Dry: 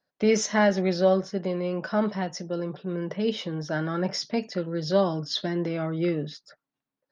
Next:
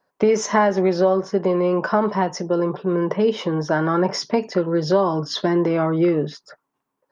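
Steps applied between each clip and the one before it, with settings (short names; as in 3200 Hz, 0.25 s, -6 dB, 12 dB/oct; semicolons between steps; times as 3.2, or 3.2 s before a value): fifteen-band EQ 400 Hz +7 dB, 1000 Hz +12 dB, 4000 Hz -6 dB; compressor 4:1, threshold -21 dBFS, peak gain reduction 9 dB; gain +6.5 dB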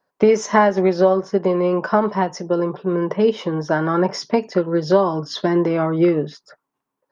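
upward expander 1.5:1, over -25 dBFS; gain +3.5 dB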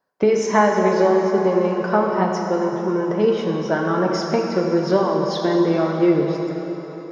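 plate-style reverb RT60 4.1 s, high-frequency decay 0.75×, DRR 0.5 dB; gain -3 dB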